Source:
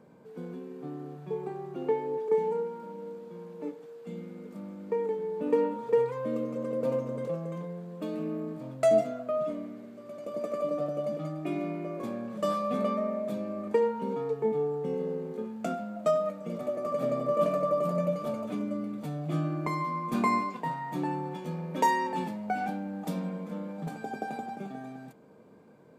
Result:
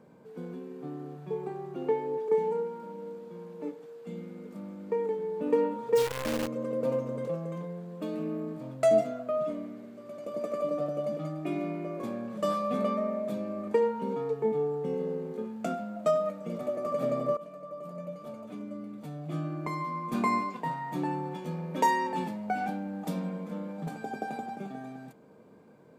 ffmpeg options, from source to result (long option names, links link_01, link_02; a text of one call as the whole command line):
ffmpeg -i in.wav -filter_complex "[0:a]asplit=3[link_01][link_02][link_03];[link_01]afade=type=out:start_time=5.95:duration=0.02[link_04];[link_02]acrusher=bits=6:dc=4:mix=0:aa=0.000001,afade=type=in:start_time=5.95:duration=0.02,afade=type=out:start_time=6.46:duration=0.02[link_05];[link_03]afade=type=in:start_time=6.46:duration=0.02[link_06];[link_04][link_05][link_06]amix=inputs=3:normalize=0,asplit=2[link_07][link_08];[link_07]atrim=end=17.37,asetpts=PTS-STARTPTS,afade=type=out:start_time=17.366:duration=0.004:curve=hsin:silence=0.0944061[link_09];[link_08]atrim=start=17.37,asetpts=PTS-STARTPTS,afade=type=in:duration=3.36:silence=0.0944061[link_10];[link_09][link_10]concat=n=2:v=0:a=1" out.wav